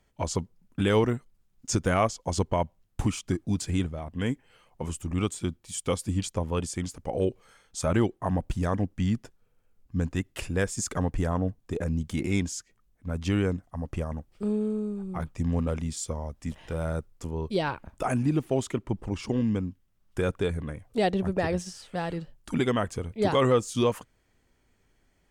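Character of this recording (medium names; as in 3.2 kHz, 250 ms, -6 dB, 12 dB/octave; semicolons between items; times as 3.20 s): noise floor -68 dBFS; spectral tilt -6.0 dB/octave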